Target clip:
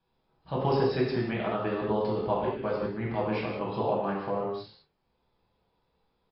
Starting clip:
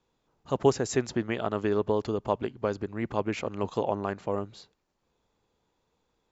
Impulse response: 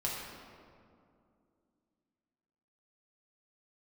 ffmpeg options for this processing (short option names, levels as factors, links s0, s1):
-filter_complex "[0:a]asplit=2[s0][s1];[s1]adelay=27,volume=0.398[s2];[s0][s2]amix=inputs=2:normalize=0[s3];[1:a]atrim=start_sample=2205,afade=t=out:st=0.26:d=0.01,atrim=end_sample=11907[s4];[s3][s4]afir=irnorm=-1:irlink=0,volume=0.708" -ar 12000 -c:a libmp3lame -b:a 32k